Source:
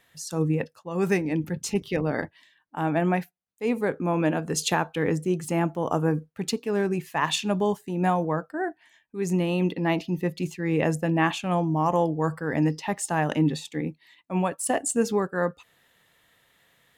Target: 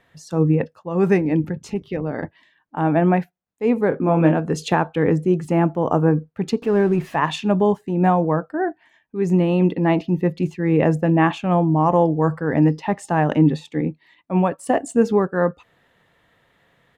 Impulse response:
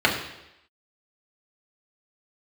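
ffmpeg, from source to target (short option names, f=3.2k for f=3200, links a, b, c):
-filter_complex "[0:a]asettb=1/sr,asplit=3[a][b][c];[a]atrim=end=6.624[d];[b]atrim=start=6.62:end=7.16,asetpts=PTS-STARTPTS,afade=t=in:d=0.004:c=qsin,afade=t=out:st=0.536:d=0.004:c=qsin,aeval=exprs='val(0)+0.5*0.0133*sgn(val(0))':c=same[e];[c]atrim=start=7.156[f];[d][e]acrossfade=d=0.004:c1=hsin:c2=qsin[g];[g][f]acrossfade=d=0.004:c1=qsin:c2=hsin,lowpass=f=1.2k:p=1,asettb=1/sr,asplit=3[h][i][j];[h]atrim=end=1.514[k];[i]atrim=start=1.51:end=2.23,asetpts=PTS-STARTPTS,afade=t=in:d=0.004:c=qsin,afade=t=out:st=0.716:d=0.004:c=qsin,acompressor=threshold=-40dB:ratio=1.5[l];[j]atrim=start=2.226[m];[k][l]acrossfade=d=0.004:c1=hsin:c2=qsin[n];[n][m]acrossfade=d=0.004:c1=qsin:c2=hsin,asplit=3[o][p][q];[o]afade=t=out:st=3.91:d=0.02[r];[p]asplit=2[s][t];[t]adelay=25,volume=-4.5dB[u];[s][u]amix=inputs=2:normalize=0,afade=t=in:st=3.91:d=0.02,afade=t=out:st=4.33:d=0.02[v];[q]afade=t=in:st=4.33:d=0.02[w];[r][v][w]amix=inputs=3:normalize=0,volume=7.5dB"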